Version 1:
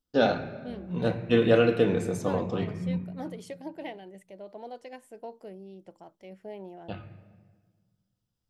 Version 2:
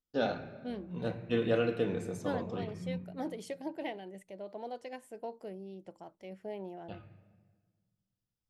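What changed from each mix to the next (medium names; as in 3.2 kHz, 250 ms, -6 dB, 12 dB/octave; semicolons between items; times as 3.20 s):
first voice -8.5 dB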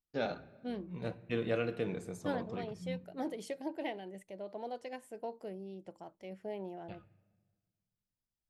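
first voice: send -10.5 dB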